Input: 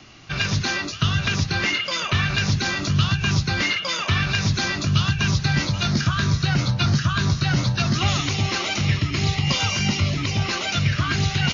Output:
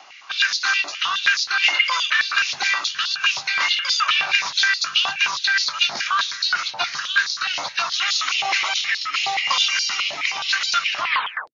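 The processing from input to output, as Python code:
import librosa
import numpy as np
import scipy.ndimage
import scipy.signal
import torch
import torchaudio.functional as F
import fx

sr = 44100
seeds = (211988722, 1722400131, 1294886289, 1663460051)

y = fx.tape_stop_end(x, sr, length_s=0.53)
y = fx.filter_held_highpass(y, sr, hz=9.5, low_hz=800.0, high_hz=4400.0)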